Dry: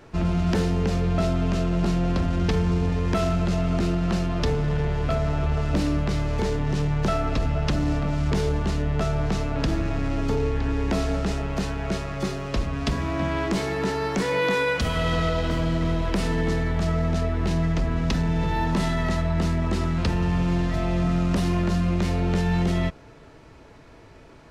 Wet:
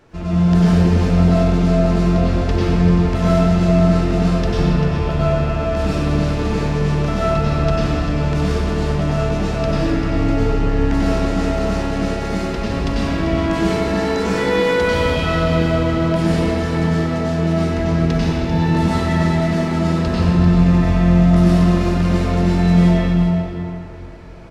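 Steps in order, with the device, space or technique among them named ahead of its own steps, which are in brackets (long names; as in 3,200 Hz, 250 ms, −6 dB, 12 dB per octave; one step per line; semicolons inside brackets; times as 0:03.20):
cave (single-tap delay 393 ms −10 dB; convolution reverb RT60 2.9 s, pre-delay 89 ms, DRR −9.5 dB)
level −3.5 dB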